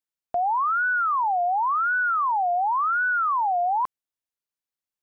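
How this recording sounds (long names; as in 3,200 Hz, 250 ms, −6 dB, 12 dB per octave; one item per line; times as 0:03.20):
background noise floor −92 dBFS
spectral slope +0.5 dB per octave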